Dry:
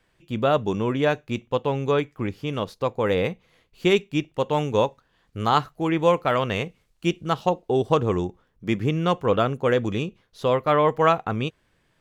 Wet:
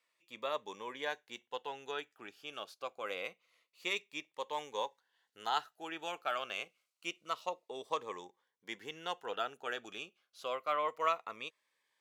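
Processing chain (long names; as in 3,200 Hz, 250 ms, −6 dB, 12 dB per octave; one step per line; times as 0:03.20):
high-pass filter 830 Hz 12 dB per octave
phaser whose notches keep moving one way falling 0.27 Hz
level −8 dB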